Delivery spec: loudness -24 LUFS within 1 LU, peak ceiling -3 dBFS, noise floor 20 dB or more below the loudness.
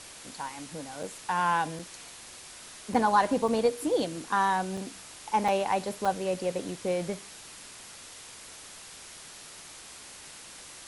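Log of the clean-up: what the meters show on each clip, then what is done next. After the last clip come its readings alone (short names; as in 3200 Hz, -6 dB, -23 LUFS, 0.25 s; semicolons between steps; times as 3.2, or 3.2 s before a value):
dropouts 7; longest dropout 4.4 ms; noise floor -47 dBFS; noise floor target -49 dBFS; loudness -29.0 LUFS; peak -11.5 dBFS; loudness target -24.0 LUFS
-> interpolate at 1.03/1.79/2.94/3.48/4.77/5.48/6.05, 4.4 ms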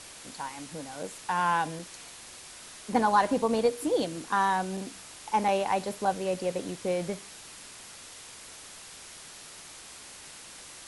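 dropouts 0; noise floor -47 dBFS; noise floor target -49 dBFS
-> noise print and reduce 6 dB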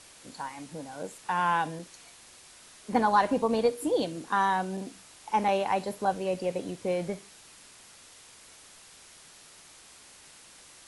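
noise floor -53 dBFS; loudness -29.0 LUFS; peak -11.5 dBFS; loudness target -24.0 LUFS
-> gain +5 dB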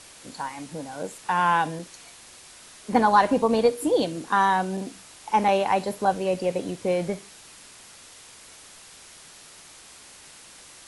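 loudness -24.0 LUFS; peak -6.5 dBFS; noise floor -48 dBFS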